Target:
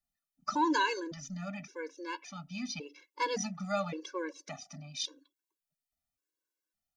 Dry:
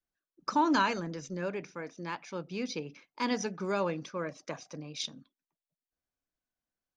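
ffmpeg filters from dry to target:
-af "aphaser=in_gain=1:out_gain=1:delay=4.7:decay=0.25:speed=0.31:type=triangular,highshelf=f=4.3k:g=7,afftfilt=real='re*gt(sin(2*PI*0.89*pts/sr)*(1-2*mod(floor(b*sr/1024/290),2)),0)':imag='im*gt(sin(2*PI*0.89*pts/sr)*(1-2*mod(floor(b*sr/1024/290),2)),0)':win_size=1024:overlap=0.75"

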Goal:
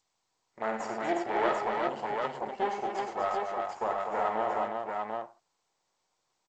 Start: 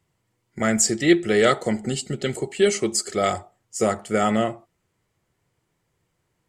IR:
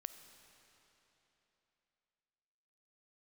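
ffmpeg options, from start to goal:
-filter_complex "[0:a]aeval=exprs='max(val(0),0)':c=same,bandpass=f=860:t=q:w=2.2:csg=0,asoftclip=type=tanh:threshold=-18.5dB,asplit=2[a][b];[b]aecho=0:1:50|94|108|244|361|742:0.376|0.282|0.282|0.447|0.668|0.668[c];[a][c]amix=inputs=2:normalize=0,volume=1dB" -ar 16000 -c:a g722

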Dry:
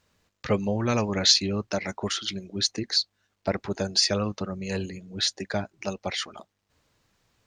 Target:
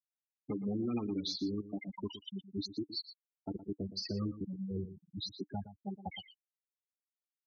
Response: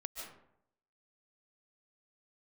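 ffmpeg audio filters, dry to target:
-filter_complex "[0:a]afftfilt=real='re*gte(hypot(re,im),0.141)':imag='im*gte(hypot(re,im),0.141)':win_size=1024:overlap=0.75,asubboost=boost=6.5:cutoff=100,asplit=3[a][b][c];[a]bandpass=f=300:t=q:w=8,volume=0dB[d];[b]bandpass=f=870:t=q:w=8,volume=-6dB[e];[c]bandpass=f=2.24k:t=q:w=8,volume=-9dB[f];[d][e][f]amix=inputs=3:normalize=0,alimiter=level_in=16dB:limit=-24dB:level=0:latency=1:release=107,volume=-16dB,asplit=2[g][h];[h]aecho=0:1:117:0.211[i];[g][i]amix=inputs=2:normalize=0,volume=11.5dB"

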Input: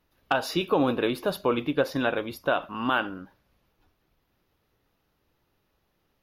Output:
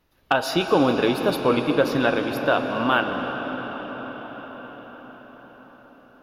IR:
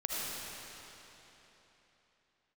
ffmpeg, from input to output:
-filter_complex "[0:a]asplit=2[a][b];[1:a]atrim=start_sample=2205,asetrate=22050,aresample=44100[c];[b][c]afir=irnorm=-1:irlink=0,volume=-13dB[d];[a][d]amix=inputs=2:normalize=0,volume=2dB"

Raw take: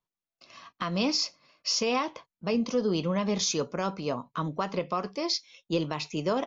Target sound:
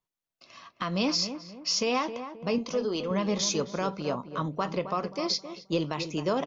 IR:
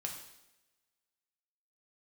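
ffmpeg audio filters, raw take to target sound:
-filter_complex "[0:a]asettb=1/sr,asplit=3[a][b][c];[a]atrim=end=2.584[d];[b]atrim=start=2.58:end=3.11,asetpts=PTS-STARTPTS,afade=t=in:d=0.004:c=qsin,afade=t=out:st=0.526:d=0.004:c=qsin,equalizer=f=180:t=o:w=1:g=-11.5[e];[c]atrim=start=3.106[f];[d][e]acrossfade=d=0.004:c1=hsin:c2=qsin[g];[g][f]acrossfade=d=0.004:c1=qsin:c2=hsin,asplit=2[h][i];[i]adelay=265,lowpass=f=1.3k:p=1,volume=-9.5dB,asplit=2[j][k];[k]adelay=265,lowpass=f=1.3k:p=1,volume=0.4,asplit=2[l][m];[m]adelay=265,lowpass=f=1.3k:p=1,volume=0.4,asplit=2[n][o];[o]adelay=265,lowpass=f=1.3k:p=1,volume=0.4[p];[h][j][l][n][p]amix=inputs=5:normalize=0"

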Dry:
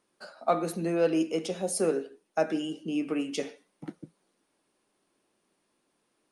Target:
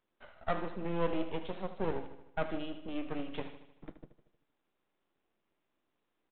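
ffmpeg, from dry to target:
-af "aresample=8000,aeval=exprs='max(val(0),0)':c=same,aresample=44100,aecho=1:1:77|154|231|308|385|462:0.251|0.141|0.0788|0.0441|0.0247|0.0138,volume=-4dB"

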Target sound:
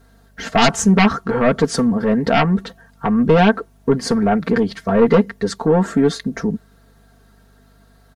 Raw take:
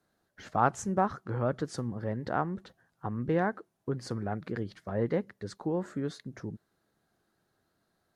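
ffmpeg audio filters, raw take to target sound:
-af "aeval=exprs='0.335*sin(PI/2*4.47*val(0)/0.335)':c=same,aecho=1:1:4.4:0.87,aeval=exprs='val(0)+0.00282*(sin(2*PI*50*n/s)+sin(2*PI*2*50*n/s)/2+sin(2*PI*3*50*n/s)/3+sin(2*PI*4*50*n/s)/4+sin(2*PI*5*50*n/s)/5)':c=same"

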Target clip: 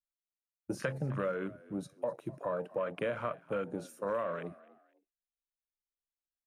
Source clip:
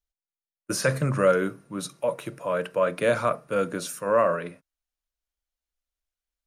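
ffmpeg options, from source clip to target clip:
-filter_complex "[0:a]afwtdn=0.0282,acompressor=threshold=-29dB:ratio=6,asplit=2[a][b];[b]asplit=2[c][d];[c]adelay=253,afreqshift=58,volume=-21dB[e];[d]adelay=506,afreqshift=116,volume=-30.9dB[f];[e][f]amix=inputs=2:normalize=0[g];[a][g]amix=inputs=2:normalize=0,volume=-2.5dB"

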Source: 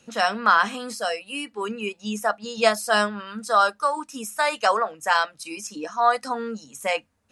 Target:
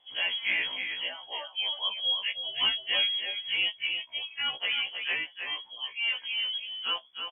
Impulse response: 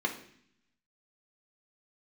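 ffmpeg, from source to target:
-af "equalizer=f=1.4k:w=0.43:g=-11,asoftclip=type=tanh:threshold=-17.5dB,lowpass=f=3k:t=q:w=0.5098,lowpass=f=3k:t=q:w=0.6013,lowpass=f=3k:t=q:w=0.9,lowpass=f=3k:t=q:w=2.563,afreqshift=-3500,aecho=1:1:317:0.473,afftfilt=real='re*1.73*eq(mod(b,3),0)':imag='im*1.73*eq(mod(b,3),0)':win_size=2048:overlap=0.75,volume=2.5dB"

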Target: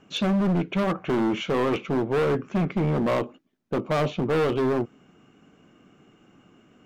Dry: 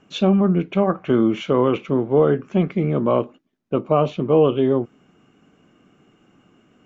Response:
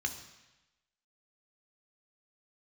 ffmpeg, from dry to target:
-af "volume=20dB,asoftclip=hard,volume=-20dB"

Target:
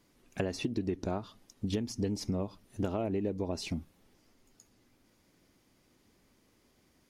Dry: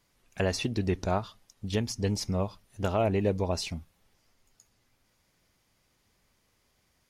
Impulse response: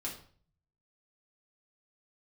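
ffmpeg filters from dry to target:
-af "equalizer=f=290:t=o:w=1.3:g=11.5,acompressor=threshold=-30dB:ratio=6"

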